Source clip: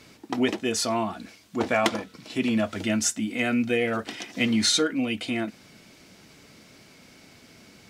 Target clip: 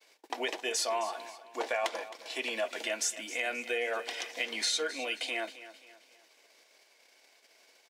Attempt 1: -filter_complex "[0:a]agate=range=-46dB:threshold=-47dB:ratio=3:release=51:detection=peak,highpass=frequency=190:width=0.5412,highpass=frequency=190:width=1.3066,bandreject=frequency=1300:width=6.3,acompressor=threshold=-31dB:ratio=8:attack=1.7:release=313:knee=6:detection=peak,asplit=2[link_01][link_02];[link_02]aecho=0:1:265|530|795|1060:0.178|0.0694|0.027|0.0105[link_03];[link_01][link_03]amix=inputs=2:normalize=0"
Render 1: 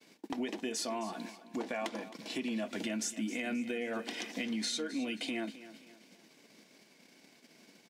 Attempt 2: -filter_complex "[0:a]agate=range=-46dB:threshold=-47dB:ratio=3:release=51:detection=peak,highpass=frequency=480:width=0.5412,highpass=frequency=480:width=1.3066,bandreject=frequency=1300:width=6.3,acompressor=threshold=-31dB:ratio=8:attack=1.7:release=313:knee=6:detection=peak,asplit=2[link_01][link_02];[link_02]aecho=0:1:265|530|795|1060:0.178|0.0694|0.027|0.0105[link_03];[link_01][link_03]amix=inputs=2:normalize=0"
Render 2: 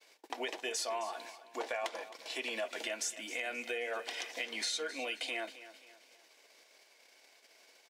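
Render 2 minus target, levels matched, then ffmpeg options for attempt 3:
downward compressor: peak gain reduction +5.5 dB
-filter_complex "[0:a]agate=range=-46dB:threshold=-47dB:ratio=3:release=51:detection=peak,highpass=frequency=480:width=0.5412,highpass=frequency=480:width=1.3066,bandreject=frequency=1300:width=6.3,acompressor=threshold=-24.5dB:ratio=8:attack=1.7:release=313:knee=6:detection=peak,asplit=2[link_01][link_02];[link_02]aecho=0:1:265|530|795|1060:0.178|0.0694|0.027|0.0105[link_03];[link_01][link_03]amix=inputs=2:normalize=0"

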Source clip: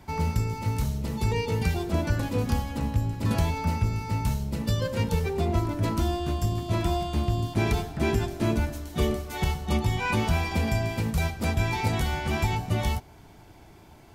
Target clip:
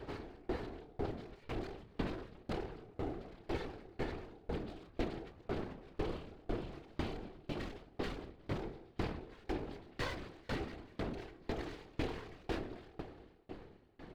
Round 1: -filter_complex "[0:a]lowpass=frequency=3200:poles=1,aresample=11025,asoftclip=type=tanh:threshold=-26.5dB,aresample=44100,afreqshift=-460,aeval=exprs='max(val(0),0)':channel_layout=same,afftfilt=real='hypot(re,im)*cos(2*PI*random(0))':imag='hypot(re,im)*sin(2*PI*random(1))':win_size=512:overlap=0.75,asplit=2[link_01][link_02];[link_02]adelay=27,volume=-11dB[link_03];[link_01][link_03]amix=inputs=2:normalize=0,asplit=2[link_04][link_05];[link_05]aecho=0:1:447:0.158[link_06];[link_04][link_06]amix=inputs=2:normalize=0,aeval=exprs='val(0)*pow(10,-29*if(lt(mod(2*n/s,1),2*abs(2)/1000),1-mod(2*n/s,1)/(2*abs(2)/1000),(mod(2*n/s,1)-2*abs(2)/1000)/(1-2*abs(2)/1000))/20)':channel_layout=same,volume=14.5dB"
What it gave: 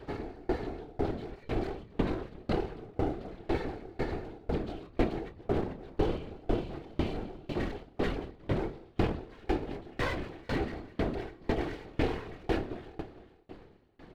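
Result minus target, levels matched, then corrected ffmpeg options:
soft clipping: distortion −6 dB
-filter_complex "[0:a]lowpass=frequency=3200:poles=1,aresample=11025,asoftclip=type=tanh:threshold=-38dB,aresample=44100,afreqshift=-460,aeval=exprs='max(val(0),0)':channel_layout=same,afftfilt=real='hypot(re,im)*cos(2*PI*random(0))':imag='hypot(re,im)*sin(2*PI*random(1))':win_size=512:overlap=0.75,asplit=2[link_01][link_02];[link_02]adelay=27,volume=-11dB[link_03];[link_01][link_03]amix=inputs=2:normalize=0,asplit=2[link_04][link_05];[link_05]aecho=0:1:447:0.158[link_06];[link_04][link_06]amix=inputs=2:normalize=0,aeval=exprs='val(0)*pow(10,-29*if(lt(mod(2*n/s,1),2*abs(2)/1000),1-mod(2*n/s,1)/(2*abs(2)/1000),(mod(2*n/s,1)-2*abs(2)/1000)/(1-2*abs(2)/1000))/20)':channel_layout=same,volume=14.5dB"

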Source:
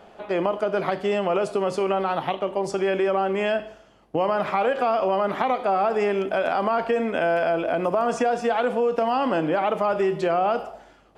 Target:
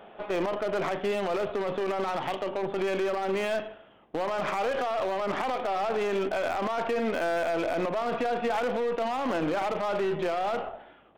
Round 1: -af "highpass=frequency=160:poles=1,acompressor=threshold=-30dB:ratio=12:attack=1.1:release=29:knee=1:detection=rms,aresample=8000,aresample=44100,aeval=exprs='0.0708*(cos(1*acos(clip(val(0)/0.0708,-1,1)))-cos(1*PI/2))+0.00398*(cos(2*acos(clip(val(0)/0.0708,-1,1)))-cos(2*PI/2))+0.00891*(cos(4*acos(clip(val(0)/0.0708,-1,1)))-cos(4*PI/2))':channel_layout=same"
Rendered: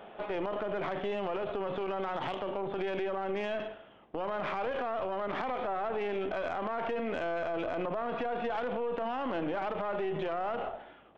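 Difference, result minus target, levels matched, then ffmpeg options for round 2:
downward compressor: peak gain reduction +6 dB
-af "highpass=frequency=160:poles=1,acompressor=threshold=-23.5dB:ratio=12:attack=1.1:release=29:knee=1:detection=rms,aresample=8000,aresample=44100,aeval=exprs='0.0708*(cos(1*acos(clip(val(0)/0.0708,-1,1)))-cos(1*PI/2))+0.00398*(cos(2*acos(clip(val(0)/0.0708,-1,1)))-cos(2*PI/2))+0.00891*(cos(4*acos(clip(val(0)/0.0708,-1,1)))-cos(4*PI/2))':channel_layout=same"

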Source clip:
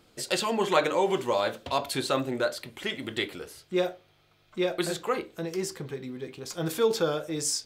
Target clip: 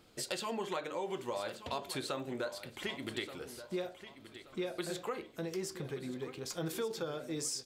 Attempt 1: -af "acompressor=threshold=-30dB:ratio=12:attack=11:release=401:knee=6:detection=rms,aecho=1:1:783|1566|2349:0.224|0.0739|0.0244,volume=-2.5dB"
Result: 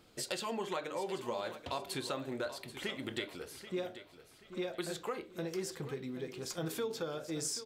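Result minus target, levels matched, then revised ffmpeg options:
echo 395 ms early
-af "acompressor=threshold=-30dB:ratio=12:attack=11:release=401:knee=6:detection=rms,aecho=1:1:1178|2356|3534:0.224|0.0739|0.0244,volume=-2.5dB"

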